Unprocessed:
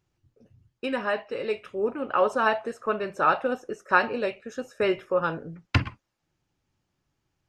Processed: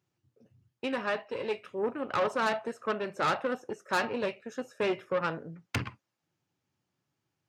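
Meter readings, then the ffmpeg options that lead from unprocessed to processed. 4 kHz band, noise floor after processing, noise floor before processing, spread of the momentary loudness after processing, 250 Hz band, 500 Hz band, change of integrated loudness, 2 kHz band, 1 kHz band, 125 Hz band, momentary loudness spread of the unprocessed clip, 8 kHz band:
-2.0 dB, -84 dBFS, -79 dBFS, 8 LU, -4.0 dB, -5.0 dB, -5.5 dB, -6.0 dB, -6.0 dB, -8.5 dB, 10 LU, no reading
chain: -af "aeval=exprs='(tanh(14.1*val(0)+0.7)-tanh(0.7))/14.1':c=same,highpass=f=100:w=0.5412,highpass=f=100:w=1.3066"

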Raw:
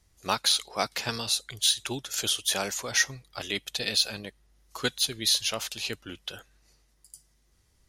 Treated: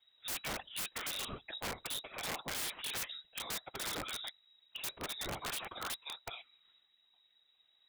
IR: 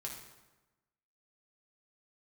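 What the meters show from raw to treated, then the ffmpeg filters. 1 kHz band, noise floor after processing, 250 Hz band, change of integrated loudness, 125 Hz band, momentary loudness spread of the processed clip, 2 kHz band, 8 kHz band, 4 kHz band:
-9.0 dB, -73 dBFS, -12.0 dB, -13.0 dB, -11.0 dB, 5 LU, -10.5 dB, -13.5 dB, -14.0 dB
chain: -af "afftfilt=real='hypot(re,im)*cos(2*PI*random(0))':imag='hypot(re,im)*sin(2*PI*random(1))':win_size=512:overlap=0.75,lowpass=f=3300:t=q:w=0.5098,lowpass=f=3300:t=q:w=0.6013,lowpass=f=3300:t=q:w=0.9,lowpass=f=3300:t=q:w=2.563,afreqshift=-3900,aeval=exprs='(mod(56.2*val(0)+1,2)-1)/56.2':c=same,volume=1.26"

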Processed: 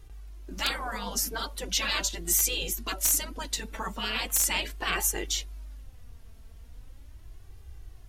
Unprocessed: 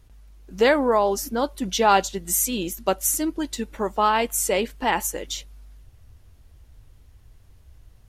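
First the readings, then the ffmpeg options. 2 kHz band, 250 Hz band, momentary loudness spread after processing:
-3.5 dB, -14.0 dB, 11 LU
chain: -af "afftfilt=real='re*lt(hypot(re,im),0.158)':imag='im*lt(hypot(re,im),0.158)':win_size=1024:overlap=0.75,aeval=exprs='(mod(5.96*val(0)+1,2)-1)/5.96':c=same,flanger=delay=2.5:depth=2:regen=24:speed=0.39:shape=sinusoidal,volume=2"

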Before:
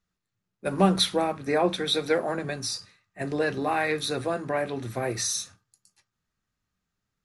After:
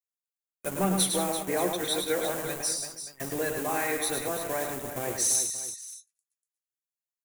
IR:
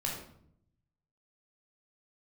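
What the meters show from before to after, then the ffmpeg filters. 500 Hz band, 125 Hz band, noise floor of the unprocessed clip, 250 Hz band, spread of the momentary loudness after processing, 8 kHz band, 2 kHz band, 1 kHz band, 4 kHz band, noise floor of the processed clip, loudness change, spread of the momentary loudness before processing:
-4.0 dB, -5.5 dB, -84 dBFS, -4.5 dB, 12 LU, +6.0 dB, -3.0 dB, -4.0 dB, -4.5 dB, under -85 dBFS, -1.5 dB, 9 LU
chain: -filter_complex "[0:a]afftdn=nr=18:nf=-41,lowshelf=f=83:g=-8.5,acrossover=split=1600[s0][s1];[s0]aeval=exprs='val(0)*gte(abs(val(0)),0.0211)':c=same[s2];[s2][s1]amix=inputs=2:normalize=0,aexciter=amount=4.9:drive=6.7:freq=6600,asoftclip=type=tanh:threshold=0.2,aecho=1:1:106|174|186|337|578:0.531|0.112|0.168|0.316|0.141,volume=0.631"

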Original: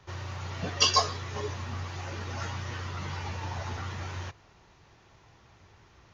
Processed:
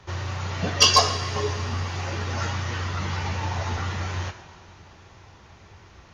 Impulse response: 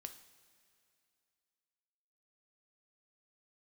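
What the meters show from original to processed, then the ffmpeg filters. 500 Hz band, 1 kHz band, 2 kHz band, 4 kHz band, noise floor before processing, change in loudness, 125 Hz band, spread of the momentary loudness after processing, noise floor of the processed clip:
+7.5 dB, +7.0 dB, +7.5 dB, +7.0 dB, -59 dBFS, +7.0 dB, +7.5 dB, 14 LU, -51 dBFS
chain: -filter_complex "[0:a]aeval=exprs='clip(val(0),-1,0.188)':c=same,asplit=2[s0][s1];[1:a]atrim=start_sample=2205,asetrate=22050,aresample=44100[s2];[s1][s2]afir=irnorm=-1:irlink=0,volume=2[s3];[s0][s3]amix=inputs=2:normalize=0,volume=0.891"

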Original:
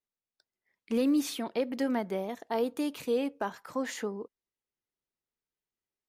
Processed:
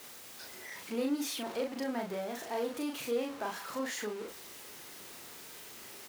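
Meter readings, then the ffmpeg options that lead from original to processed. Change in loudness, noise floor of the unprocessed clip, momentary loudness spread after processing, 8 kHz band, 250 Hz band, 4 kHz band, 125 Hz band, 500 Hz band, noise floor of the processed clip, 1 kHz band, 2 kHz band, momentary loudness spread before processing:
-6.0 dB, under -85 dBFS, 12 LU, +2.5 dB, -6.5 dB, +1.0 dB, no reading, -4.0 dB, -50 dBFS, -2.5 dB, +0.5 dB, 9 LU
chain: -filter_complex "[0:a]aeval=exprs='val(0)+0.5*0.02*sgn(val(0))':c=same,highpass=f=260:p=1,asplit=2[s0][s1];[s1]adelay=38,volume=0.708[s2];[s0][s2]amix=inputs=2:normalize=0,volume=0.473"

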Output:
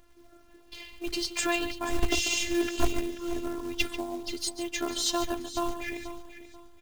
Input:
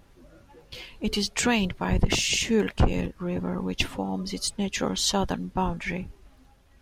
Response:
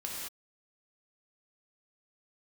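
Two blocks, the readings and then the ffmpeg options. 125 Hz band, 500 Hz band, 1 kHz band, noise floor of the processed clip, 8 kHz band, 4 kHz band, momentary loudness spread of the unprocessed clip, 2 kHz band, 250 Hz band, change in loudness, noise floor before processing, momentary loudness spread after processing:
-14.5 dB, -3.5 dB, -4.0 dB, -56 dBFS, -3.0 dB, -3.5 dB, 10 LU, -2.5 dB, -5.0 dB, -4.0 dB, -57 dBFS, 16 LU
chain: -filter_complex "[0:a]asplit=2[s0][s1];[s1]adelay=139.9,volume=0.282,highshelf=f=4000:g=-3.15[s2];[s0][s2]amix=inputs=2:normalize=0,afftfilt=real='hypot(re,im)*cos(PI*b)':imag='0':win_size=512:overlap=0.75,acrusher=bits=4:mode=log:mix=0:aa=0.000001,asplit=2[s3][s4];[s4]aecho=0:1:485|970|1455:0.211|0.0634|0.019[s5];[s3][s5]amix=inputs=2:normalize=0"

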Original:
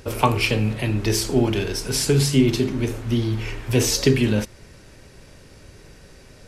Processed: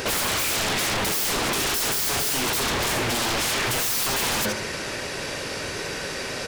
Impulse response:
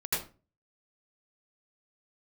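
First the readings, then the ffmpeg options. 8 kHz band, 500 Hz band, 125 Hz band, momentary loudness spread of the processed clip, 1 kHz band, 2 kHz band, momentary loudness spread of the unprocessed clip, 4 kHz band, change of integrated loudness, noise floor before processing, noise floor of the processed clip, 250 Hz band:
+3.5 dB, -5.5 dB, -13.0 dB, 8 LU, +1.5 dB, +4.5 dB, 7 LU, +3.5 dB, -2.0 dB, -47 dBFS, -31 dBFS, -10.5 dB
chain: -filter_complex "[0:a]asplit=2[s0][s1];[s1]highpass=f=720:p=1,volume=28.2,asoftclip=type=tanh:threshold=0.708[s2];[s0][s2]amix=inputs=2:normalize=0,lowpass=f=5100:p=1,volume=0.501,bandreject=f=62.05:t=h:w=4,bandreject=f=124.1:t=h:w=4,bandreject=f=186.15:t=h:w=4,bandreject=f=248.2:t=h:w=4,bandreject=f=310.25:t=h:w=4,bandreject=f=372.3:t=h:w=4,bandreject=f=434.35:t=h:w=4,bandreject=f=496.4:t=h:w=4,bandreject=f=558.45:t=h:w=4,bandreject=f=620.5:t=h:w=4,bandreject=f=682.55:t=h:w=4,bandreject=f=744.6:t=h:w=4,bandreject=f=806.65:t=h:w=4,bandreject=f=868.7:t=h:w=4,bandreject=f=930.75:t=h:w=4,bandreject=f=992.8:t=h:w=4,bandreject=f=1054.85:t=h:w=4,bandreject=f=1116.9:t=h:w=4,bandreject=f=1178.95:t=h:w=4,bandreject=f=1241:t=h:w=4,bandreject=f=1303.05:t=h:w=4,bandreject=f=1365.1:t=h:w=4,bandreject=f=1427.15:t=h:w=4,bandreject=f=1489.2:t=h:w=4,bandreject=f=1551.25:t=h:w=4,bandreject=f=1613.3:t=h:w=4,bandreject=f=1675.35:t=h:w=4,bandreject=f=1737.4:t=h:w=4,bandreject=f=1799.45:t=h:w=4,bandreject=f=1861.5:t=h:w=4,bandreject=f=1923.55:t=h:w=4,bandreject=f=1985.6:t=h:w=4,bandreject=f=2047.65:t=h:w=4,bandreject=f=2109.7:t=h:w=4,bandreject=f=2171.75:t=h:w=4,bandreject=f=2233.8:t=h:w=4,bandreject=f=2295.85:t=h:w=4,bandreject=f=2357.9:t=h:w=4,bandreject=f=2419.95:t=h:w=4,asplit=2[s3][s4];[s4]aecho=0:1:75|150|225:0.237|0.064|0.0173[s5];[s3][s5]amix=inputs=2:normalize=0,aeval=exprs='0.106*(abs(mod(val(0)/0.106+3,4)-2)-1)':c=same"

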